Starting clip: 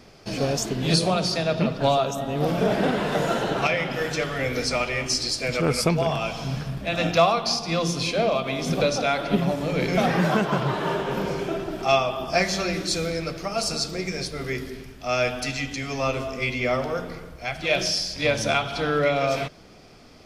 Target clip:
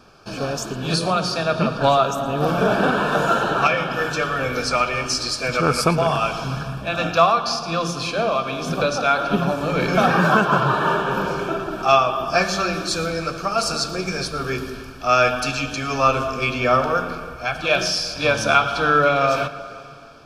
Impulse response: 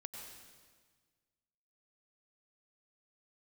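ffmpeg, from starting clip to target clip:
-filter_complex "[0:a]equalizer=frequency=1300:width=1.5:gain=10.5,dynaudnorm=framelen=890:gausssize=3:maxgain=11.5dB,asuperstop=centerf=2000:order=12:qfactor=5.2,asplit=2[link_01][link_02];[1:a]atrim=start_sample=2205,asetrate=25137,aresample=44100,adelay=114[link_03];[link_02][link_03]afir=irnorm=-1:irlink=0,volume=-15dB[link_04];[link_01][link_04]amix=inputs=2:normalize=0,volume=-2.5dB"

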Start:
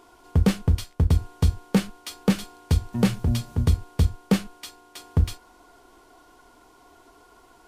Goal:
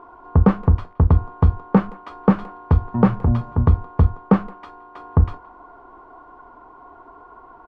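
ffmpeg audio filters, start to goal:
ffmpeg -i in.wav -filter_complex "[0:a]lowpass=frequency=1100:width_type=q:width=2.7,asplit=2[link_01][link_02];[link_02]adelay=170,highpass=300,lowpass=3400,asoftclip=type=hard:threshold=-16.5dB,volume=-22dB[link_03];[link_01][link_03]amix=inputs=2:normalize=0,volume=5dB" out.wav

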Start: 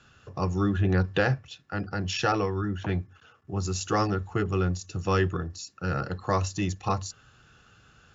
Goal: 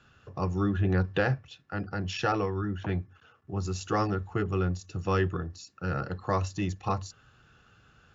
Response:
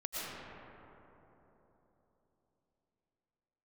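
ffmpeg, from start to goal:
-af "highshelf=frequency=6100:gain=-11,volume=-2dB"

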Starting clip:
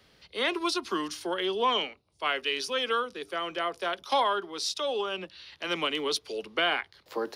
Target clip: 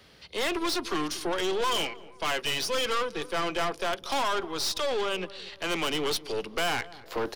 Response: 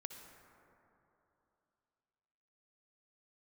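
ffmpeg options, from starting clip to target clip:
-filter_complex "[0:a]asettb=1/sr,asplit=3[link_01][link_02][link_03];[link_01]atrim=end=1.604[link_04];[link_02]atrim=start=1.6:end=3.67,asetpts=PTS-STARTPTS,afade=type=in:duration=0.004:curve=qsin,afade=type=out:start_time=2.066:duration=0.004:curve=qsin,aecho=1:1:6:0.52,atrim=end_sample=91287[link_05];[link_03]atrim=start=3.666[link_06];[link_04][link_05]acrossfade=duration=0.004:curve1=hsin:curve2=qsin[link_07];[link_07][link_06]acrossfade=duration=0.004:curve1=qsin:curve2=hsin,aeval=exprs='(tanh(44.7*val(0)+0.5)-tanh(0.5))/44.7':channel_layout=same,asplit=2[link_08][link_09];[link_09]adelay=233,lowpass=frequency=990:poles=1,volume=-16.5dB,asplit=2[link_10][link_11];[link_11]adelay=233,lowpass=frequency=990:poles=1,volume=0.5,asplit=2[link_12][link_13];[link_13]adelay=233,lowpass=frequency=990:poles=1,volume=0.5,asplit=2[link_14][link_15];[link_15]adelay=233,lowpass=frequency=990:poles=1,volume=0.5[link_16];[link_08][link_10][link_12][link_14][link_16]amix=inputs=5:normalize=0,volume=7.5dB"

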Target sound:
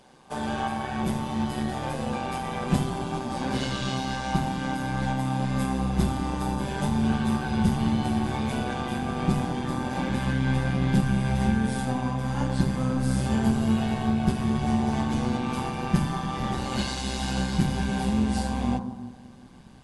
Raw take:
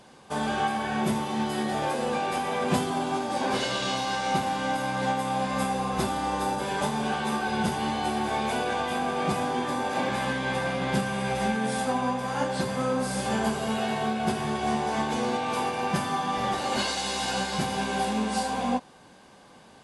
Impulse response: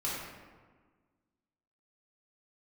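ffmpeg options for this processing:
-filter_complex "[0:a]bandreject=frequency=50:width_type=h:width=6,bandreject=frequency=100:width_type=h:width=6,bandreject=frequency=150:width_type=h:width=6,asplit=2[link_01][link_02];[link_02]lowpass=frequency=1400:width=0.5412,lowpass=frequency=1400:width=1.3066[link_03];[1:a]atrim=start_sample=2205[link_04];[link_03][link_04]afir=irnorm=-1:irlink=0,volume=-11.5dB[link_05];[link_01][link_05]amix=inputs=2:normalize=0,tremolo=f=130:d=0.571,asubboost=boost=5:cutoff=220,volume=-1dB"

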